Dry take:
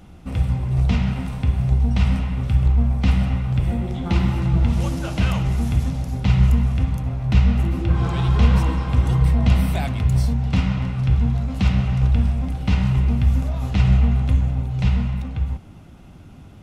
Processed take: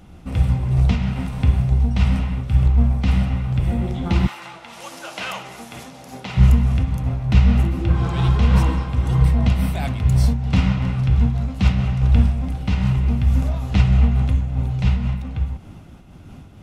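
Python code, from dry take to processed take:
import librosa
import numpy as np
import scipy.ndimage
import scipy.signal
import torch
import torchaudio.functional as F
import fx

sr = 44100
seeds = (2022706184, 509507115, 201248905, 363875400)

y = fx.highpass(x, sr, hz=fx.line((4.26, 990.0), (6.36, 330.0)), slope=12, at=(4.26, 6.36), fade=0.02)
y = fx.am_noise(y, sr, seeds[0], hz=5.7, depth_pct=65)
y = y * 10.0 ** (4.5 / 20.0)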